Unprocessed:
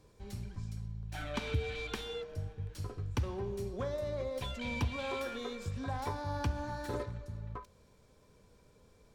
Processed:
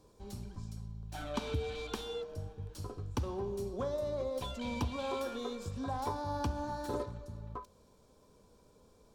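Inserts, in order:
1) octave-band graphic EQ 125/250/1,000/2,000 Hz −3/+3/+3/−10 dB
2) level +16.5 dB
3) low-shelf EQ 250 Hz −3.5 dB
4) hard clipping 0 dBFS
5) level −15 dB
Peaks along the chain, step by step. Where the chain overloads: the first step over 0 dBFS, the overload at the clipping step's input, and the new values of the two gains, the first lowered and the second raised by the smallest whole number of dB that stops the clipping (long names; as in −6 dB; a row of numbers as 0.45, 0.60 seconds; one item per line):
−21.0, −4.5, −5.0, −5.0, −20.0 dBFS
no step passes full scale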